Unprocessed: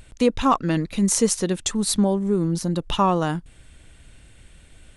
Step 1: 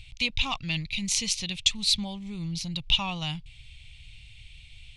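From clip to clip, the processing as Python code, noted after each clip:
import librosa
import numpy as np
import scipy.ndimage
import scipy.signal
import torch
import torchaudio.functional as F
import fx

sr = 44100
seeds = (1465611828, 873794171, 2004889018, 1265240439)

y = fx.curve_eq(x, sr, hz=(130.0, 190.0, 430.0, 790.0, 1600.0, 2300.0, 4100.0, 9300.0), db=(0, -13, -28, -12, -20, 8, 7, -12))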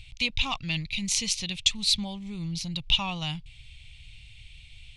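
y = x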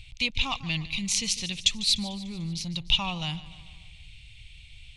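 y = fx.echo_feedback(x, sr, ms=148, feedback_pct=57, wet_db=-17.0)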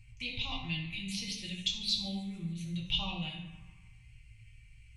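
y = fx.comb_fb(x, sr, f0_hz=260.0, decay_s=0.86, harmonics='all', damping=0.0, mix_pct=70)
y = fx.env_phaser(y, sr, low_hz=580.0, high_hz=1800.0, full_db=-31.0)
y = fx.rev_fdn(y, sr, rt60_s=0.86, lf_ratio=1.05, hf_ratio=0.6, size_ms=51.0, drr_db=-3.5)
y = F.gain(torch.from_numpy(y), -1.0).numpy()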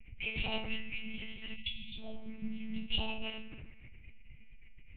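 y = fx.fixed_phaser(x, sr, hz=1100.0, stages=6)
y = fx.lpc_monotone(y, sr, seeds[0], pitch_hz=220.0, order=8)
y = fx.spec_erase(y, sr, start_s=1.56, length_s=0.4, low_hz=250.0, high_hz=1900.0)
y = F.gain(torch.from_numpy(y), 5.0).numpy()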